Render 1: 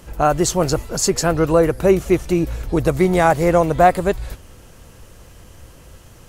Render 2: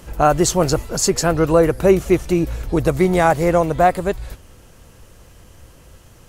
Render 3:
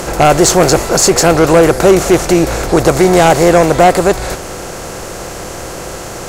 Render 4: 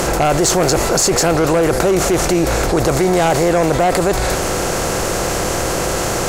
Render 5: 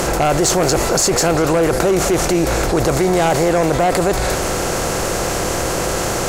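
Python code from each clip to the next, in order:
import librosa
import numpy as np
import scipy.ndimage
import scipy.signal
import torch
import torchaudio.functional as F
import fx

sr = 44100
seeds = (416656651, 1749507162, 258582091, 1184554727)

y1 = fx.rider(x, sr, range_db=10, speed_s=2.0)
y2 = fx.bin_compress(y1, sr, power=0.6)
y2 = fx.low_shelf(y2, sr, hz=240.0, db=-5.5)
y2 = fx.fold_sine(y2, sr, drive_db=6, ceiling_db=0.5)
y2 = y2 * 10.0 ** (-2.0 / 20.0)
y3 = fx.env_flatten(y2, sr, amount_pct=70)
y3 = y3 * 10.0 ** (-8.5 / 20.0)
y4 = y3 + 10.0 ** (-17.0 / 20.0) * np.pad(y3, (int(196 * sr / 1000.0), 0))[:len(y3)]
y4 = y4 * 10.0 ** (-1.0 / 20.0)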